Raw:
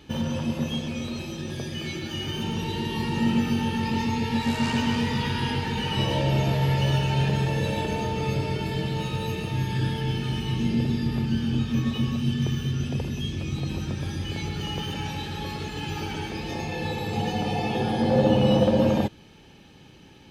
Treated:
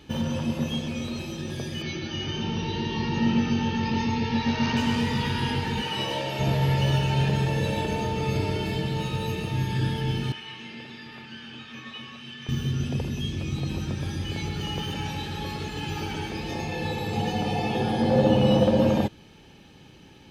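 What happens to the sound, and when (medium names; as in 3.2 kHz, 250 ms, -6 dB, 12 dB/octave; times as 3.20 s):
1.82–4.77 s: brick-wall FIR low-pass 6.5 kHz
5.81–6.39 s: high-pass 300 Hz -> 700 Hz 6 dB/octave
8.30–8.78 s: doubling 41 ms -5 dB
10.32–12.49 s: band-pass filter 2 kHz, Q 1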